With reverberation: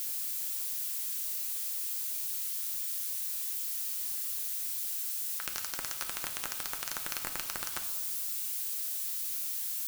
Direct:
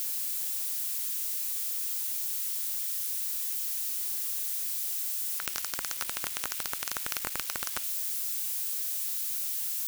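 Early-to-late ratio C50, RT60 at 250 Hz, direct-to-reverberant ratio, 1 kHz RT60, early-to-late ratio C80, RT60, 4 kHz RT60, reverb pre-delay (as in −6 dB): 10.0 dB, 1.6 s, 5.0 dB, 1.3 s, 11.5 dB, 1.4 s, 1.1 s, 6 ms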